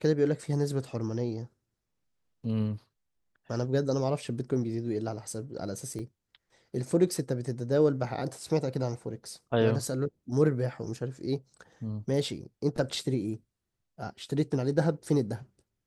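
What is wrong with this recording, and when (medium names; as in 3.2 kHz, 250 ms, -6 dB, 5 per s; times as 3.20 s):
5.99 s: dropout 4 ms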